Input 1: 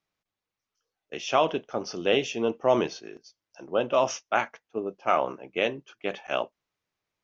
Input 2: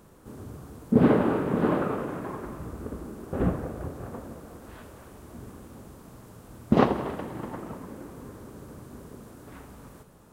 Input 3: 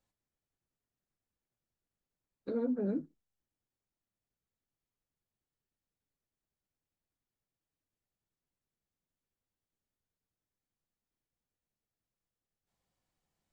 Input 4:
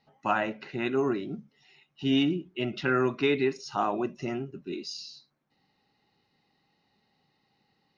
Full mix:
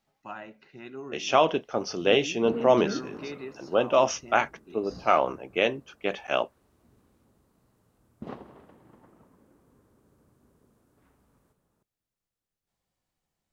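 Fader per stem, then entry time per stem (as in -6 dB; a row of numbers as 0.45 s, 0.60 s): +2.0 dB, -20.0 dB, +1.5 dB, -13.5 dB; 0.00 s, 1.50 s, 0.00 s, 0.00 s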